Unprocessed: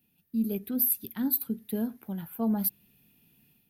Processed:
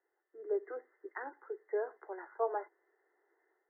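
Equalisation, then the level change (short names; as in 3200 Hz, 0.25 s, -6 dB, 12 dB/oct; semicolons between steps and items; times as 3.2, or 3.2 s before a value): steep high-pass 350 Hz 96 dB/oct; brick-wall FIR low-pass 2100 Hz; bell 560 Hz -2.5 dB; +5.0 dB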